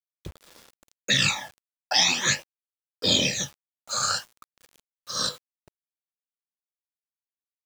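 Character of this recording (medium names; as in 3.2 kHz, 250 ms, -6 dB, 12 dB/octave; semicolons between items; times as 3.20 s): phasing stages 12, 0.44 Hz, lowest notch 320–2500 Hz; a quantiser's noise floor 8-bit, dither none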